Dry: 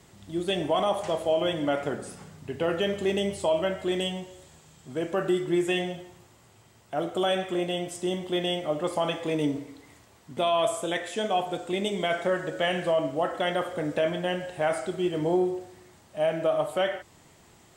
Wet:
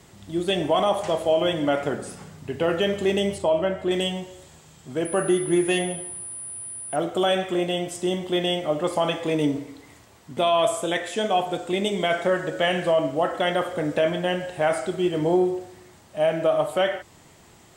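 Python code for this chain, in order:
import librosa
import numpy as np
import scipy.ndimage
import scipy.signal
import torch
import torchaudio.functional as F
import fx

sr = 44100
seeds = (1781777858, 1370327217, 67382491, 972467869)

y = fx.high_shelf(x, sr, hz=2600.0, db=-10.0, at=(3.38, 3.91))
y = fx.pwm(y, sr, carrier_hz=9800.0, at=(5.05, 6.96))
y = y * 10.0 ** (4.0 / 20.0)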